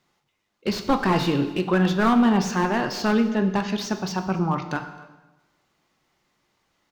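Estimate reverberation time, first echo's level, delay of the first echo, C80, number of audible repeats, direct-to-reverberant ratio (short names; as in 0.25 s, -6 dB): 1.1 s, -23.5 dB, 0.266 s, 11.5 dB, 1, 7.5 dB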